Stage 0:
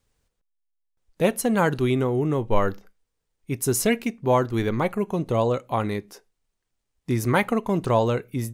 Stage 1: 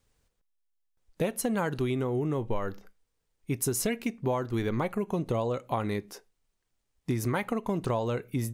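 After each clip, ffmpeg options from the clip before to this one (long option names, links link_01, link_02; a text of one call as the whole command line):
ffmpeg -i in.wav -af "acompressor=threshold=-25dB:ratio=10" out.wav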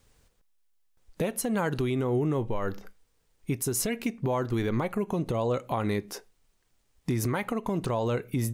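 ffmpeg -i in.wav -af "alimiter=level_in=3dB:limit=-24dB:level=0:latency=1:release=352,volume=-3dB,volume=8.5dB" out.wav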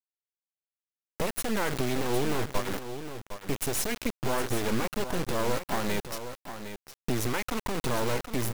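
ffmpeg -i in.wav -af "acrusher=bits=3:dc=4:mix=0:aa=0.000001,aecho=1:1:760:0.316,volume=3dB" out.wav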